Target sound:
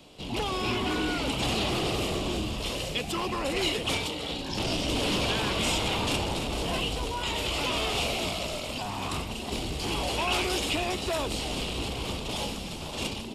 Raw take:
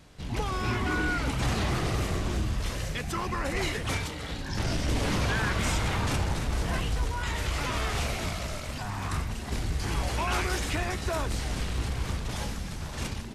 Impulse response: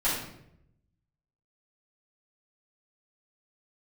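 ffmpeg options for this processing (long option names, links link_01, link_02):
-filter_complex "[0:a]highshelf=frequency=2200:width_type=q:width=3:gain=9,bandreject=frequency=6100:width=12,acrossover=split=220|1300|3200[link_01][link_02][link_03][link_04];[link_02]aeval=exprs='0.106*sin(PI/2*3.16*val(0)/0.106)':channel_layout=same[link_05];[link_01][link_05][link_03][link_04]amix=inputs=4:normalize=0,volume=-7dB"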